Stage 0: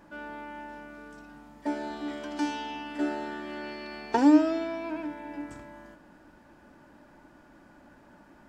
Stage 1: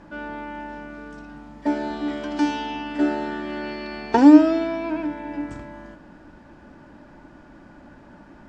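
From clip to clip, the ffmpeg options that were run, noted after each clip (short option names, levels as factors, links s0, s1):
-af "lowpass=6300,lowshelf=f=260:g=6,volume=2"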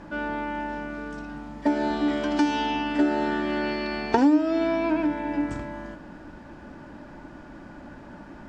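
-af "acompressor=threshold=0.0794:ratio=4,volume=1.5"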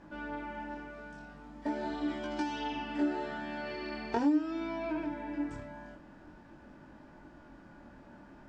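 -af "flanger=delay=19:depth=7:speed=0.43,volume=0.422"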